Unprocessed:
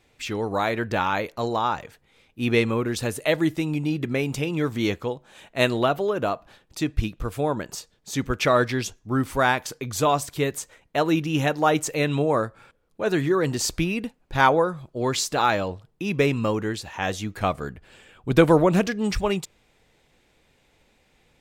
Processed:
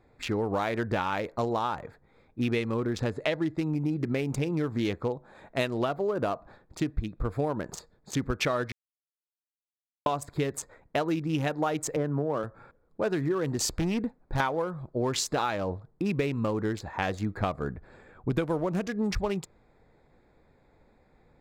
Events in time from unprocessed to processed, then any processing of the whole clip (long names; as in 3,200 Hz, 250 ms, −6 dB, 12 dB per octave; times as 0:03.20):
0:02.96–0:03.58: low-pass filter 6,300 Hz
0:08.72–0:10.06: silence
0:11.96–0:12.44: elliptic band-pass filter 130–1,600 Hz
0:13.75–0:14.40: gain into a clipping stage and back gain 23 dB
whole clip: adaptive Wiener filter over 15 samples; downward compressor 10 to 1, threshold −27 dBFS; level +2.5 dB